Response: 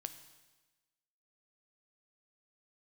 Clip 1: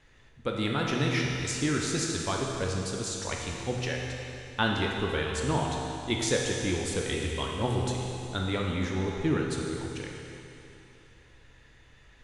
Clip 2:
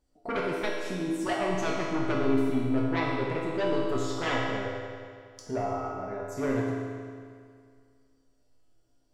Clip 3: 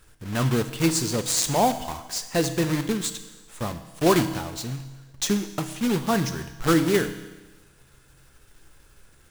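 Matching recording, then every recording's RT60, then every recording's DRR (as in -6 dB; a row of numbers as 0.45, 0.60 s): 3; 2.9, 2.1, 1.2 s; -1.0, -4.5, 9.5 dB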